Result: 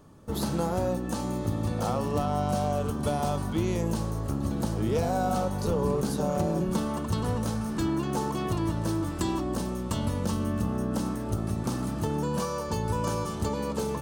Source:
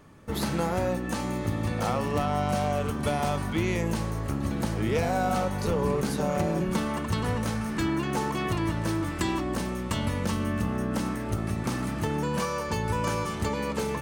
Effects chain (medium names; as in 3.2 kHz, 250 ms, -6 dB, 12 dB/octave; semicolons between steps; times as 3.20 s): peaking EQ 2.1 kHz -11.5 dB 0.93 oct